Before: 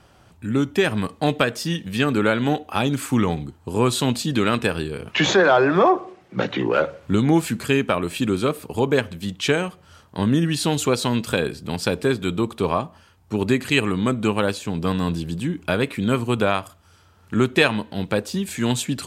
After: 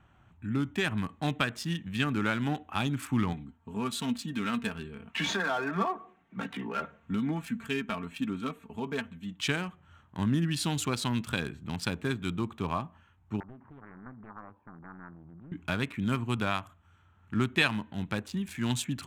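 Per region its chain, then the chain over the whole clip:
3.33–9.40 s: comb 4.4 ms, depth 61% + flange 1 Hz, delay 3.2 ms, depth 2 ms, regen +73%
13.40–15.52 s: compression 2.5:1, threshold -25 dBFS + four-pole ladder low-pass 1 kHz, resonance 75% + loudspeaker Doppler distortion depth 0.88 ms
whole clip: local Wiener filter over 9 samples; peaking EQ 490 Hz -12.5 dB 0.97 oct; trim -6 dB

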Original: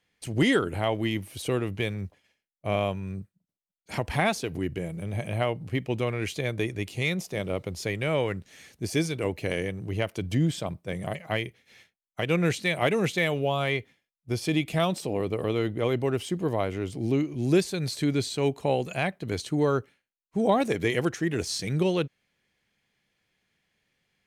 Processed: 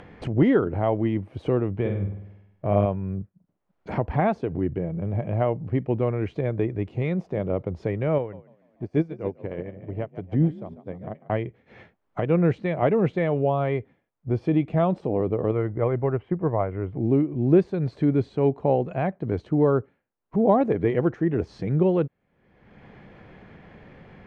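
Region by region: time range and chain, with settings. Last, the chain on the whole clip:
1.80–2.86 s: de-esser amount 90% + flutter echo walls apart 8.5 m, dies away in 0.57 s
8.18–11.30 s: frequency-shifting echo 145 ms, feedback 49%, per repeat +41 Hz, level -9 dB + upward expansion 2.5:1, over -44 dBFS
15.51–16.99 s: FFT filter 150 Hz 0 dB, 230 Hz -7 dB, 1 kHz +1 dB, 2.1 kHz +2 dB, 5.9 kHz -22 dB + transient shaper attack +4 dB, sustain -3 dB
whole clip: low-pass 1 kHz 12 dB/octave; upward compressor, threshold -29 dBFS; trim +4.5 dB

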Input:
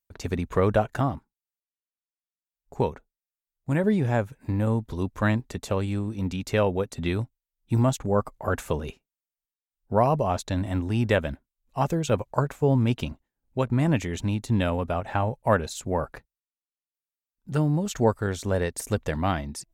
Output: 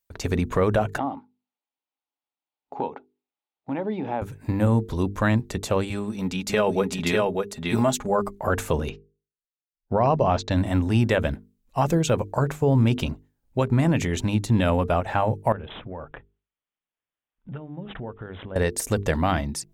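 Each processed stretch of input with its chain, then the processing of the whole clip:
0.98–4.22 s: cabinet simulation 260–3800 Hz, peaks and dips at 270 Hz +8 dB, 830 Hz +10 dB, 1.7 kHz -7 dB + compression 2:1, threshold -36 dBFS
5.90–8.28 s: bass shelf 230 Hz -8.5 dB + comb 4.8 ms, depth 49% + delay 595 ms -3 dB
8.89–10.51 s: low-pass 5.6 kHz 24 dB/octave + gate -53 dBFS, range -15 dB
15.52–18.56 s: low-pass 3.1 kHz 6 dB/octave + compression 4:1, threshold -39 dBFS + careless resampling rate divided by 6×, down none, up filtered
whole clip: hum notches 50/100/150/200/250/300/350/400/450 Hz; peak limiter -16.5 dBFS; trim +5.5 dB

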